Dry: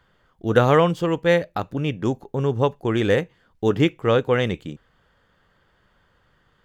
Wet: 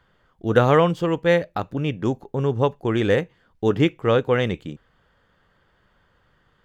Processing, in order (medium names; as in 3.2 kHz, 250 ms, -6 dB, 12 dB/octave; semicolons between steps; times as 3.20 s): treble shelf 5.6 kHz -4.5 dB